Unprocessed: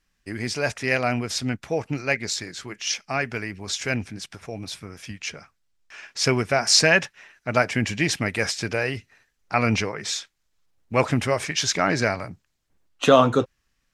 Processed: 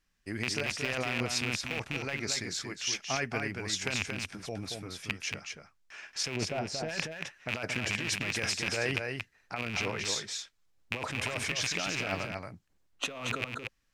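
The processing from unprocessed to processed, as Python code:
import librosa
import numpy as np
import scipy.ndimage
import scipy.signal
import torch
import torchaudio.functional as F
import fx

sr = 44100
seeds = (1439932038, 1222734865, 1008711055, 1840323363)

y = fx.rattle_buzz(x, sr, strikes_db=-31.0, level_db=-8.0)
y = fx.curve_eq(y, sr, hz=(610.0, 1100.0, 11000.0), db=(0, -10, -21), at=(6.35, 6.88), fade=0.02)
y = fx.over_compress(y, sr, threshold_db=-25.0, ratio=-1.0)
y = y + 10.0 ** (-5.0 / 20.0) * np.pad(y, (int(229 * sr / 1000.0), 0))[:len(y)]
y = y * librosa.db_to_amplitude(-8.5)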